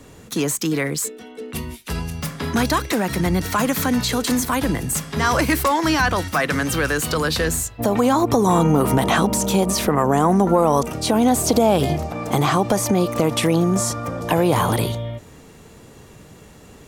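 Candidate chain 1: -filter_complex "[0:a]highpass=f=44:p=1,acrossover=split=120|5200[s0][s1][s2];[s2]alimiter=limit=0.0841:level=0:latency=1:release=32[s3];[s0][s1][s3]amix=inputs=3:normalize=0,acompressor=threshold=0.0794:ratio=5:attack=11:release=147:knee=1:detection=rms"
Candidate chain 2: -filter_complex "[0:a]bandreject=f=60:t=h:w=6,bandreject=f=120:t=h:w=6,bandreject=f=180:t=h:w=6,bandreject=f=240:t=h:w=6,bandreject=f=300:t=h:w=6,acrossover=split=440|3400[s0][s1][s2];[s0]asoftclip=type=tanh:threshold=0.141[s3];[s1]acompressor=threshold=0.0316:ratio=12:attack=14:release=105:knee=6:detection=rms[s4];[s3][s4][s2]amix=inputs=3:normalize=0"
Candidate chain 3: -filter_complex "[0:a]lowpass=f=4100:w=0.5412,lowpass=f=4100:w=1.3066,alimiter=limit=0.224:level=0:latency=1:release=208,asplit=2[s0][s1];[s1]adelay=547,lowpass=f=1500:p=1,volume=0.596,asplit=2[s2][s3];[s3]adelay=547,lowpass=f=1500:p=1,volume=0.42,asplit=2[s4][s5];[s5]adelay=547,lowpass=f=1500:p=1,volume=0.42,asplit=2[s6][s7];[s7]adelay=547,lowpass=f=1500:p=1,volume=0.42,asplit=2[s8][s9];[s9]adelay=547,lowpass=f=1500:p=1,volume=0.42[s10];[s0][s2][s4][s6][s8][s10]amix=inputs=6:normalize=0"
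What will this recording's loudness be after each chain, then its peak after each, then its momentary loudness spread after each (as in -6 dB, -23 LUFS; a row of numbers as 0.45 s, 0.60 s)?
-26.0 LUFS, -23.5 LUFS, -23.0 LUFS; -9.0 dBFS, -8.5 dBFS, -9.0 dBFS; 7 LU, 7 LU, 8 LU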